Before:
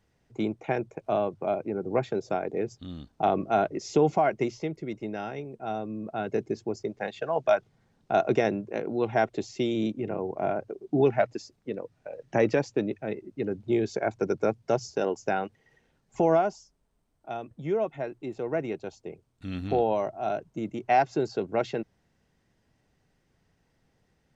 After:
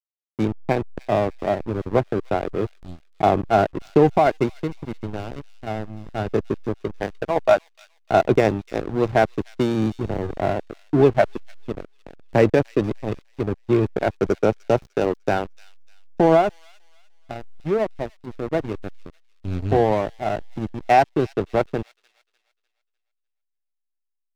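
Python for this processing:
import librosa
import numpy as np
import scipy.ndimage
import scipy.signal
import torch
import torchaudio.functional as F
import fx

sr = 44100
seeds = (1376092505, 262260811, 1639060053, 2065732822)

y = fx.peak_eq(x, sr, hz=100.0, db=8.0, octaves=0.5)
y = fx.backlash(y, sr, play_db=-25.0)
y = fx.echo_wet_highpass(y, sr, ms=300, feedback_pct=37, hz=3600.0, wet_db=-12.0)
y = y * librosa.db_to_amplitude(7.5)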